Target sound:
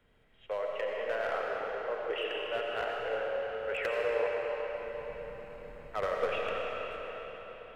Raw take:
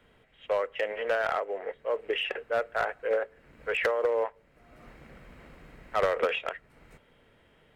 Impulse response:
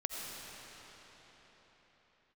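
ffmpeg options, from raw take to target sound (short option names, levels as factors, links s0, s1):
-filter_complex "[0:a]lowshelf=f=100:g=5.5[s0];[1:a]atrim=start_sample=2205[s1];[s0][s1]afir=irnorm=-1:irlink=0,volume=0.473"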